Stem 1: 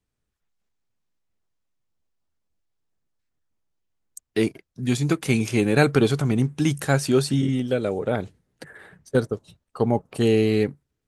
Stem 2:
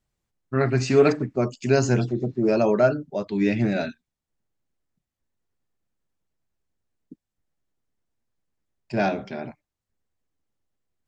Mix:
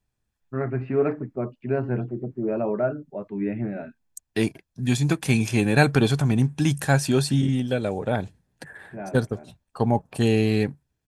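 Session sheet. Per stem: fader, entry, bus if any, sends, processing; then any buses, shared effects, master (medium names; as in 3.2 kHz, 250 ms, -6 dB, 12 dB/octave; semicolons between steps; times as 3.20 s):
0.0 dB, 0.00 s, no send, comb 1.2 ms, depth 37%
-5.0 dB, 0.00 s, no send, Bessel low-pass 1.5 kHz, order 6; auto duck -7 dB, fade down 0.60 s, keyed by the first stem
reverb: none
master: none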